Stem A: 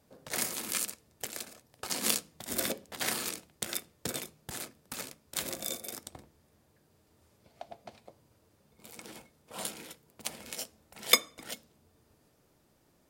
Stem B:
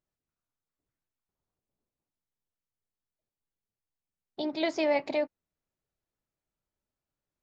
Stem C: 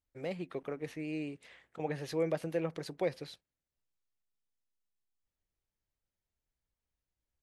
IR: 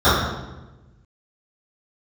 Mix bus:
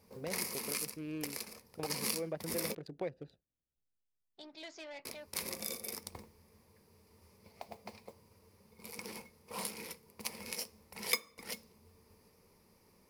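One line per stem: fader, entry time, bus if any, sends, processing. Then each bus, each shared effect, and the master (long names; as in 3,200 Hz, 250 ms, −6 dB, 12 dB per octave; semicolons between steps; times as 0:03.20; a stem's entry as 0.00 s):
+0.5 dB, 0.00 s, muted 0:02.75–0:05.05, no send, EQ curve with evenly spaced ripples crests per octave 0.86, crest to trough 10 dB; noise that follows the level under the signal 18 dB
−15.5 dB, 0.00 s, no send, soft clipping −25 dBFS, distortion −13 dB; tilt shelving filter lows −6.5 dB, about 1,200 Hz
0.0 dB, 0.00 s, no send, adaptive Wiener filter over 41 samples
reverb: not used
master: downward compressor 2 to 1, threshold −39 dBFS, peak gain reduction 14 dB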